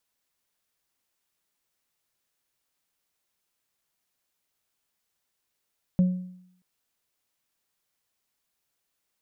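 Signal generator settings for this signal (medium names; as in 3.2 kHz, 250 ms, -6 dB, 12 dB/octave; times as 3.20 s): sine partials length 0.63 s, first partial 182 Hz, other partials 547 Hz, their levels -18 dB, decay 0.72 s, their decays 0.47 s, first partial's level -15 dB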